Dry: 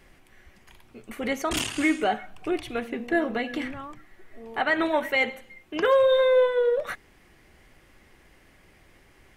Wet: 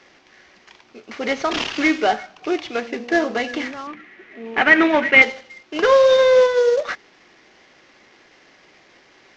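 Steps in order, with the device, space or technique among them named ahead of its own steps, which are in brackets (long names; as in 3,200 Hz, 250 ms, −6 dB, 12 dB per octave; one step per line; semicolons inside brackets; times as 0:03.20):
early wireless headset (high-pass filter 290 Hz 12 dB per octave; variable-slope delta modulation 32 kbit/s)
0:03.87–0:05.22: drawn EQ curve 120 Hz 0 dB, 210 Hz +10 dB, 640 Hz −1 dB, 920 Hz −1 dB, 2,400 Hz +9 dB, 4,800 Hz −9 dB
level +7 dB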